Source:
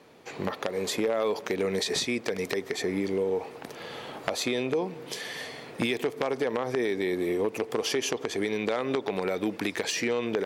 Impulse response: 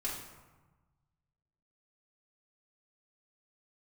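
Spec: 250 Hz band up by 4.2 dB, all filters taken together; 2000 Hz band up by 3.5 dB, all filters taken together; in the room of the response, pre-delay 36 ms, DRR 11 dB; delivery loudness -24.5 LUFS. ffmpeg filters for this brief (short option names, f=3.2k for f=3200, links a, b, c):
-filter_complex "[0:a]equalizer=f=250:t=o:g=5.5,equalizer=f=2k:t=o:g=4,asplit=2[a][b];[1:a]atrim=start_sample=2205,adelay=36[c];[b][c]afir=irnorm=-1:irlink=0,volume=-13.5dB[d];[a][d]amix=inputs=2:normalize=0,volume=2.5dB"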